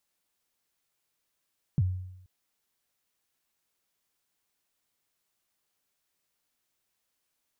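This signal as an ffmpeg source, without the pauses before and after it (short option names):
-f lavfi -i "aevalsrc='0.112*pow(10,-3*t/0.83)*sin(2*PI*(170*0.038/log(92/170)*(exp(log(92/170)*min(t,0.038)/0.038)-1)+92*max(t-0.038,0)))':d=0.48:s=44100"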